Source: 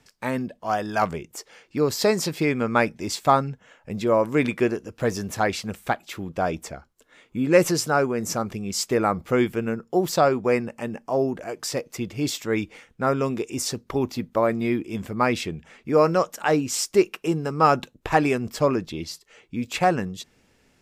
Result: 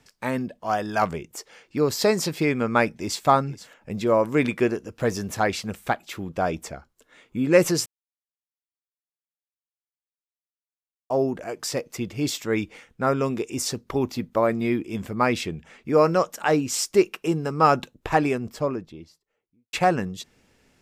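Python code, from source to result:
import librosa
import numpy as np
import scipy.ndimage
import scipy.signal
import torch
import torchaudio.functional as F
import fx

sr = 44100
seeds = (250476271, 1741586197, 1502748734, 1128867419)

y = fx.echo_throw(x, sr, start_s=2.85, length_s=0.4, ms=480, feedback_pct=10, wet_db=-16.0)
y = fx.studio_fade_out(y, sr, start_s=17.82, length_s=1.91)
y = fx.edit(y, sr, fx.silence(start_s=7.86, length_s=3.24), tone=tone)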